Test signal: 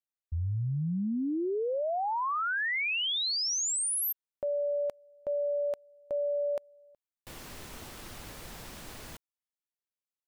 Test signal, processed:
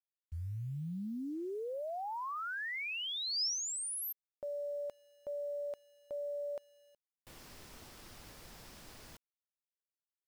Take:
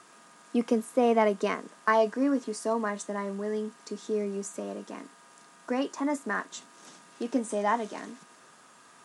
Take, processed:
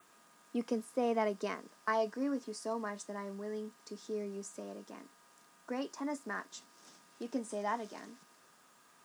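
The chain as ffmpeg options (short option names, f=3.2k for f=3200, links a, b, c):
-af "acrusher=bits=9:mix=0:aa=0.000001,adynamicequalizer=threshold=0.00112:dfrequency=5100:dqfactor=3.6:tfrequency=5100:tqfactor=3.6:attack=5:release=100:ratio=0.375:range=3.5:mode=boostabove:tftype=bell,volume=-9dB"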